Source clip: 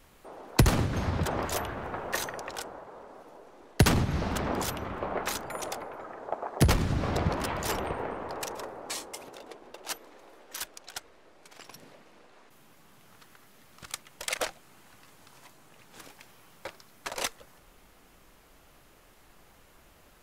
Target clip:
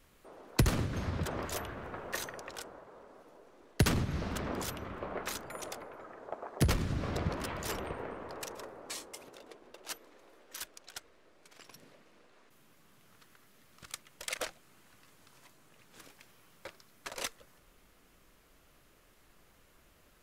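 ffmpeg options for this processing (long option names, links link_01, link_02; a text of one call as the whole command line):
ffmpeg -i in.wav -af "equalizer=frequency=820:width_type=o:width=0.52:gain=-5,volume=-5.5dB" out.wav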